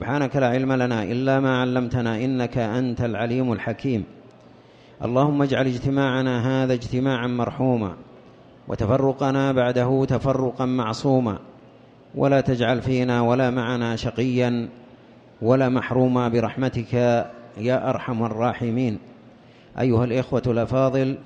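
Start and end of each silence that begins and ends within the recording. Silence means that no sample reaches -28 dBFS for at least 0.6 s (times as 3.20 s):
4.04–5.01 s
7.94–8.70 s
11.37–12.15 s
14.67–15.42 s
18.97–19.76 s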